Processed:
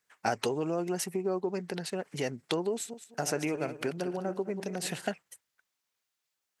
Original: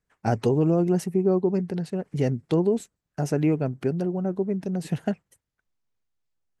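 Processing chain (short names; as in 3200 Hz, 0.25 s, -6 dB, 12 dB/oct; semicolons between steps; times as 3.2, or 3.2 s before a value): 2.73–5.07 regenerating reverse delay 0.104 s, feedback 44%, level -10.5 dB; compressor 2.5:1, threshold -26 dBFS, peak gain reduction 6.5 dB; HPF 1500 Hz 6 dB/oct; gain +9 dB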